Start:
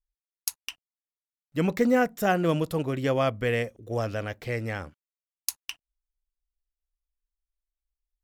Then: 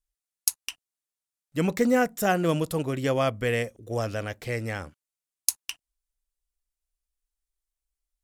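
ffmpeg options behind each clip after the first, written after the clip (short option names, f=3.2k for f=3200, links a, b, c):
-af "equalizer=f=9k:t=o:w=1.3:g=8"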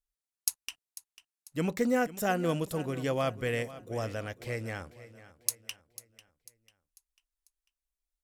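-af "aecho=1:1:495|990|1485|1980:0.15|0.0643|0.0277|0.0119,volume=-5.5dB"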